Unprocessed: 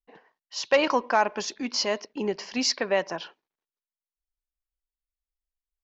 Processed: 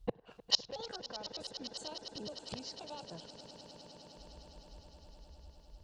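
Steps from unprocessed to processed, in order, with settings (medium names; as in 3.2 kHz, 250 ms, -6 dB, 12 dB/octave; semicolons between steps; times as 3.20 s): pitch shift switched off and on +7 st, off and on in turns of 252 ms; high-pass 42 Hz; tilt EQ -4 dB/octave; in parallel at -2 dB: compression, threshold -29 dBFS, peak gain reduction 14.5 dB; on the sum: peak limiter -14.5 dBFS, peak gain reduction 7.5 dB; inverted gate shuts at -32 dBFS, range -36 dB; graphic EQ 125/250/1000/2000/4000 Hz +9/-11/-4/-10/+7 dB; echo with a slow build-up 102 ms, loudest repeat 8, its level -17.5 dB; trim +17.5 dB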